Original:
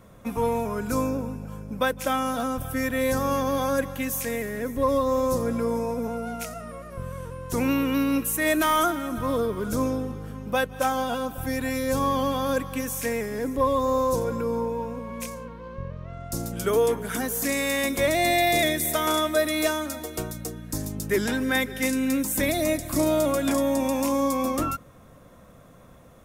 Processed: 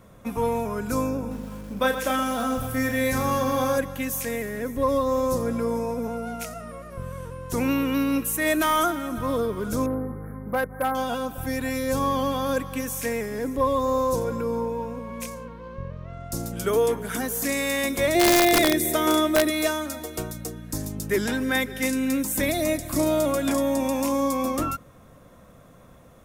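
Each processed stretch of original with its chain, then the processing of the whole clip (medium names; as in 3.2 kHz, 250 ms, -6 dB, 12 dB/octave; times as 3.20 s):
1.19–3.78 s: doubling 35 ms -5.5 dB + bit-crushed delay 121 ms, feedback 55%, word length 7-bit, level -9 dB
9.86–10.95 s: brick-wall FIR band-stop 2.3–9.6 kHz + hard clipper -19 dBFS
18.15–19.50 s: peaking EQ 360 Hz +10.5 dB 0.65 oct + integer overflow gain 11 dB
whole clip: none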